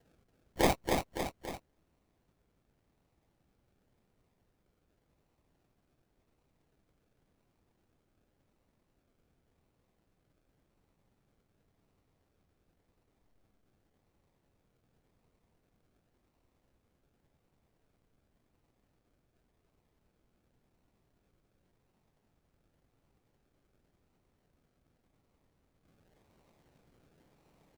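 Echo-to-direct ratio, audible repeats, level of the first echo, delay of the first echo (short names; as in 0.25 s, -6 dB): -2.5 dB, 3, -4.0 dB, 0.281 s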